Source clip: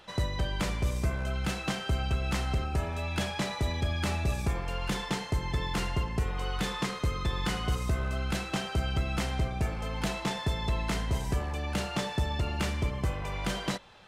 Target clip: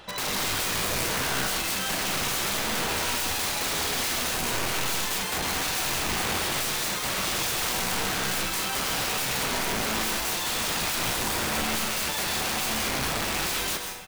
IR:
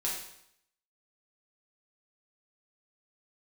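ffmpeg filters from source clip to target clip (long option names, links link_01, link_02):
-filter_complex "[0:a]aeval=exprs='(mod(39.8*val(0)+1,2)-1)/39.8':channel_layout=same,asplit=2[link_01][link_02];[link_02]adelay=37,volume=-12.5dB[link_03];[link_01][link_03]amix=inputs=2:normalize=0,asplit=2[link_04][link_05];[1:a]atrim=start_sample=2205,adelay=123[link_06];[link_05][link_06]afir=irnorm=-1:irlink=0,volume=-8.5dB[link_07];[link_04][link_07]amix=inputs=2:normalize=0,volume=7dB"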